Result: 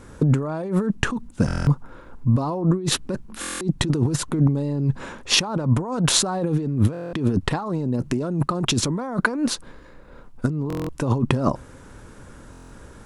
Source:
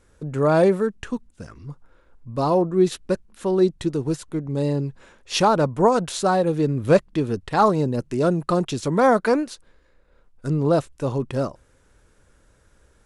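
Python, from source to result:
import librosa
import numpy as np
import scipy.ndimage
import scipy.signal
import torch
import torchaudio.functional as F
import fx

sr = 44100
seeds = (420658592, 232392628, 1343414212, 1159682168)

y = fx.graphic_eq(x, sr, hz=(125, 250, 1000), db=(6, 8, 6))
y = fx.over_compress(y, sr, threshold_db=-25.0, ratio=-1.0)
y = fx.buffer_glitch(y, sr, at_s=(1.46, 3.4, 6.92, 10.68, 12.51), block=1024, repeats=8)
y = y * 10.0 ** (2.5 / 20.0)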